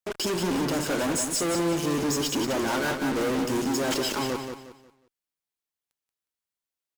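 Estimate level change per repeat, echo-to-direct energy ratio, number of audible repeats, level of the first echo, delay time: −10.0 dB, −6.0 dB, 3, −6.5 dB, 180 ms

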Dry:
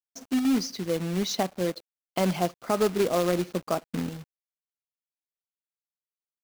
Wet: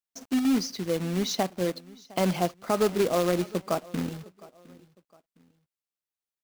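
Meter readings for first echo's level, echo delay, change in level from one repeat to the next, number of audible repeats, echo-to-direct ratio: −22.0 dB, 710 ms, −9.0 dB, 2, −21.5 dB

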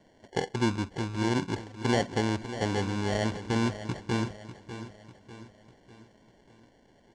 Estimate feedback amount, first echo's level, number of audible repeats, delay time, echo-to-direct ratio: 46%, −12.0 dB, 4, 597 ms, −11.0 dB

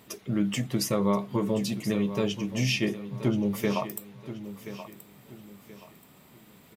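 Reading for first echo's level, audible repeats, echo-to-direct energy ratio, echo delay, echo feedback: −13.0 dB, 3, −12.5 dB, 1,028 ms, 34%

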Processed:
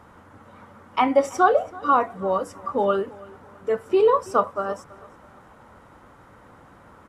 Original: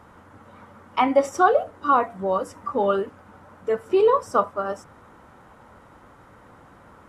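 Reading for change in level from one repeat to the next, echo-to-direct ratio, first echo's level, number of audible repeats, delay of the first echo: −8.5 dB, −21.5 dB, −22.0 dB, 2, 329 ms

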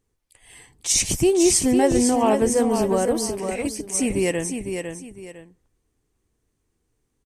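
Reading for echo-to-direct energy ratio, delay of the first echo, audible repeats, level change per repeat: −6.0 dB, 504 ms, 2, −10.5 dB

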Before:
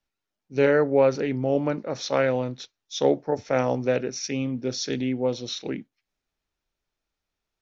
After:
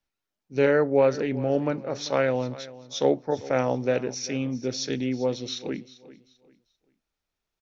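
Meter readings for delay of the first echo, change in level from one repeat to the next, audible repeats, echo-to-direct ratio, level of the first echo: 393 ms, −11.0 dB, 2, −17.5 dB, −18.0 dB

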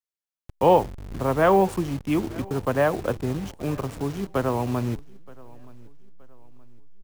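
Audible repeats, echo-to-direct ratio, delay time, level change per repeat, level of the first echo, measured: 2, −23.0 dB, 923 ms, −8.0 dB, −23.5 dB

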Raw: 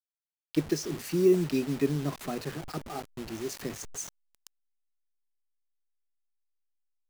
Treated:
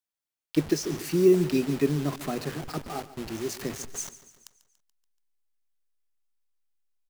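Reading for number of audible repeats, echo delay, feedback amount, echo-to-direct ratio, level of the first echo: 4, 143 ms, 53%, −14.5 dB, −16.0 dB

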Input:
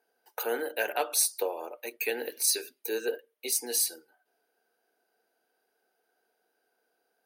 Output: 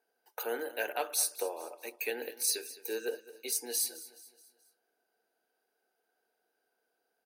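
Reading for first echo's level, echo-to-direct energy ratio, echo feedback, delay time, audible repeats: −17.0 dB, −16.0 dB, 46%, 213 ms, 3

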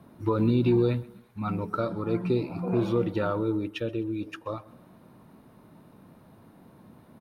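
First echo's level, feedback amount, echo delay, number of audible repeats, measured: −21.5 dB, 37%, 128 ms, 2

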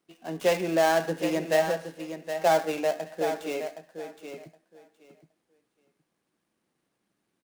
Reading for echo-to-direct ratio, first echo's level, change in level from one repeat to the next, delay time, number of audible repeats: −9.0 dB, −9.0 dB, −15.5 dB, 768 ms, 2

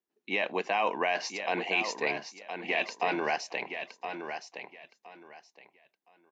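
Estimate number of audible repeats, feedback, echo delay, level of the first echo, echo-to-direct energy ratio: 3, 22%, 1,017 ms, −8.0 dB, −8.0 dB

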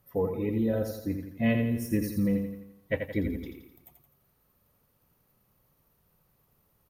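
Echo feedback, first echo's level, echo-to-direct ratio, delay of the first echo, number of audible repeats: 49%, −6.5 dB, −5.5 dB, 85 ms, 5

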